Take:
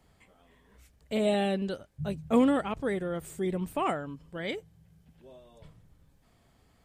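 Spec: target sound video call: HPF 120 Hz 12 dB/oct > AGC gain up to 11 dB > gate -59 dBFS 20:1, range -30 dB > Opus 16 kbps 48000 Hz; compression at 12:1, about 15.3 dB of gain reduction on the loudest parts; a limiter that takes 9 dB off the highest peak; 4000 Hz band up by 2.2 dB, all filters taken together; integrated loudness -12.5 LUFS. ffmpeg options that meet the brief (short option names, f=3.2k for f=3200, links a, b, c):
-af "equalizer=f=4k:t=o:g=3,acompressor=threshold=-33dB:ratio=12,alimiter=level_in=8.5dB:limit=-24dB:level=0:latency=1,volume=-8.5dB,highpass=120,dynaudnorm=m=11dB,agate=range=-30dB:threshold=-59dB:ratio=20,volume=30dB" -ar 48000 -c:a libopus -b:a 16k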